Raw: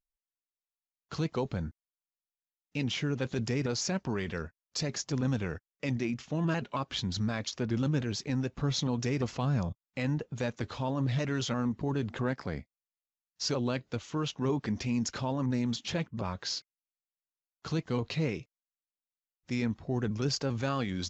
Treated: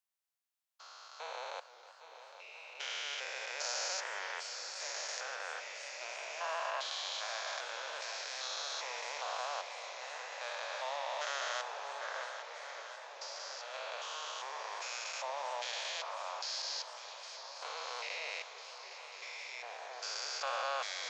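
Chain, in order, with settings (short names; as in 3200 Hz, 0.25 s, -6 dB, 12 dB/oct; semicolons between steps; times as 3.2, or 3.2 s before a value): stepped spectrum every 0.4 s; steep high-pass 600 Hz 48 dB/oct; 12.23–13.74 compressor, threshold -49 dBFS, peak gain reduction 6.5 dB; swung echo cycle 1.35 s, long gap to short 1.5:1, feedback 65%, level -12 dB; warbling echo 0.312 s, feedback 71%, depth 163 cents, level -16 dB; gain +5.5 dB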